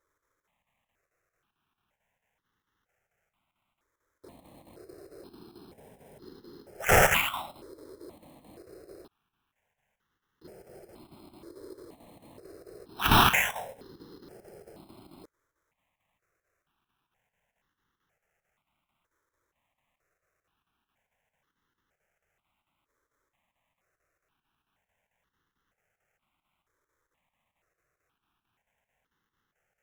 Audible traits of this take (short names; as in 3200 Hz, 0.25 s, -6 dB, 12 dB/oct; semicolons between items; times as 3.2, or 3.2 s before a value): chopped level 4.5 Hz, depth 60%, duty 80%; aliases and images of a low sample rate 4600 Hz, jitter 0%; notches that jump at a steady rate 2.1 Hz 750–2400 Hz